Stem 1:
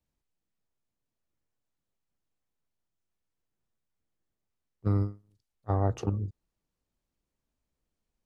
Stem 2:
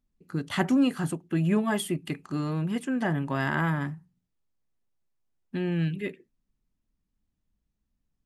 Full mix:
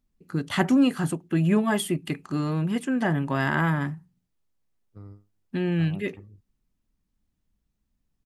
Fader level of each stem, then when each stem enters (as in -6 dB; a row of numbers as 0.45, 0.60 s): -18.0, +3.0 dB; 0.10, 0.00 s